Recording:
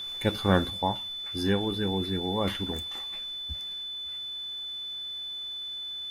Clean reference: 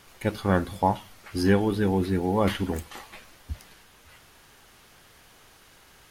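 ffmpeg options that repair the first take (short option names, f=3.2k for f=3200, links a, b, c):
-af "bandreject=f=3.5k:w=30,asetnsamples=n=441:p=0,asendcmd='0.7 volume volume 5.5dB',volume=0dB"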